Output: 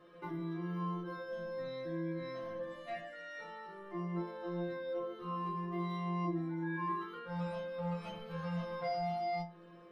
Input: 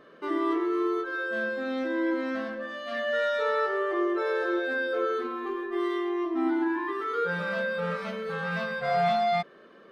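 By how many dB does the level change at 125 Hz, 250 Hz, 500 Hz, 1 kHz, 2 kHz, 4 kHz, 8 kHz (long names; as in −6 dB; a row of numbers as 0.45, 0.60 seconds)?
+2.5 dB, −10.0 dB, −12.5 dB, −10.0 dB, −17.5 dB, −13.0 dB, can't be measured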